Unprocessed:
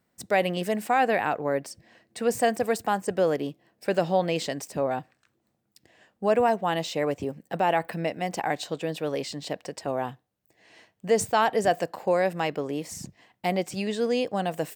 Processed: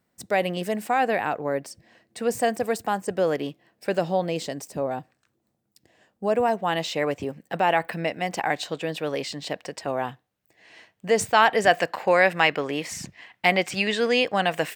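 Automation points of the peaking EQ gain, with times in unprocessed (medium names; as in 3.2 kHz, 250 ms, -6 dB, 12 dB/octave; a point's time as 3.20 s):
peaking EQ 2.1 kHz 2.3 oct
3.16 s 0 dB
3.47 s +7 dB
4.24 s -3.5 dB
6.30 s -3.5 dB
6.83 s +5.5 dB
11.06 s +5.5 dB
11.91 s +14 dB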